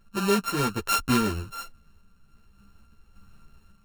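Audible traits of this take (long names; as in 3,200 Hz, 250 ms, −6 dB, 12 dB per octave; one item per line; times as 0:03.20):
a buzz of ramps at a fixed pitch in blocks of 32 samples
sample-and-hold tremolo 3.5 Hz
a shimmering, thickened sound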